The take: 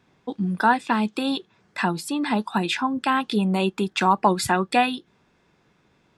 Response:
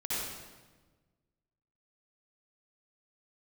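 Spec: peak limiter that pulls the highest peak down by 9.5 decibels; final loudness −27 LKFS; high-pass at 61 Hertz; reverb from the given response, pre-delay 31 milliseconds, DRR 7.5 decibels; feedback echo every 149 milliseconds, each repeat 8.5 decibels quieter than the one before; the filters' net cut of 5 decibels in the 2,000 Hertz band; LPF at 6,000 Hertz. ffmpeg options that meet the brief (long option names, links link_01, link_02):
-filter_complex "[0:a]highpass=61,lowpass=6000,equalizer=frequency=2000:width_type=o:gain=-7,alimiter=limit=-15.5dB:level=0:latency=1,aecho=1:1:149|298|447|596:0.376|0.143|0.0543|0.0206,asplit=2[link_01][link_02];[1:a]atrim=start_sample=2205,adelay=31[link_03];[link_02][link_03]afir=irnorm=-1:irlink=0,volume=-13dB[link_04];[link_01][link_04]amix=inputs=2:normalize=0,volume=-2dB"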